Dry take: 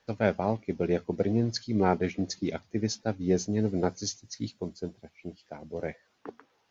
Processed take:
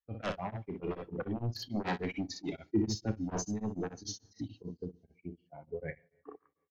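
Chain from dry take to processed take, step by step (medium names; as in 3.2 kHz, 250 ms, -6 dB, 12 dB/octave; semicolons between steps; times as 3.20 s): expander on every frequency bin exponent 2; level-controlled noise filter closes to 1.4 kHz, open at -25 dBFS; sine folder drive 12 dB, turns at -13.5 dBFS; peak limiter -26.5 dBFS, peak gain reduction 13 dB; 2.66–3.11 s: resonant low shelf 500 Hz +7 dB, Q 3; early reflections 33 ms -11 dB, 61 ms -7 dB; reverberation, pre-delay 3 ms, DRR 17.5 dB; tremolo of two beating tones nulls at 6.8 Hz; trim -2.5 dB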